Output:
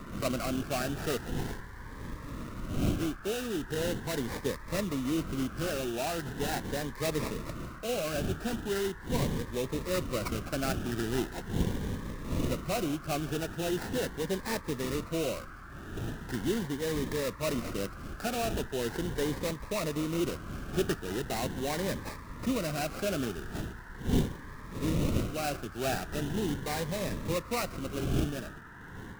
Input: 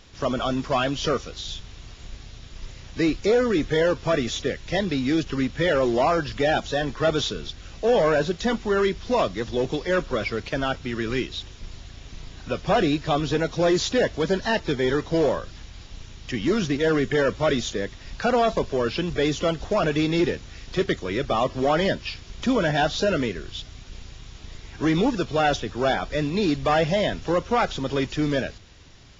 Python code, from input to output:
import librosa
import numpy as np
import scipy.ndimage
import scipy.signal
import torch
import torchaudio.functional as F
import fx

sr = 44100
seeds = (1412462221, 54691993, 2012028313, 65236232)

y = fx.dmg_wind(x, sr, seeds[0], corner_hz=270.0, level_db=-28.0)
y = fx.sample_hold(y, sr, seeds[1], rate_hz=3300.0, jitter_pct=20)
y = fx.rider(y, sr, range_db=5, speed_s=0.5)
y = fx.dmg_noise_band(y, sr, seeds[2], low_hz=920.0, high_hz=1800.0, level_db=-39.0)
y = fx.notch_cascade(y, sr, direction='rising', hz=0.4)
y = y * librosa.db_to_amplitude(-9.0)